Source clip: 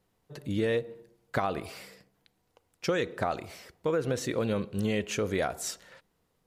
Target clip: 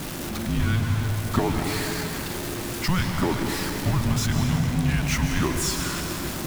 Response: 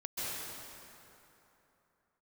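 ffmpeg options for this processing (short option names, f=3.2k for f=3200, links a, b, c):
-filter_complex "[0:a]aeval=exprs='val(0)+0.5*0.0376*sgn(val(0))':c=same,afreqshift=-360,asplit=2[a][b];[1:a]atrim=start_sample=2205[c];[b][c]afir=irnorm=-1:irlink=0,volume=-5dB[d];[a][d]amix=inputs=2:normalize=0"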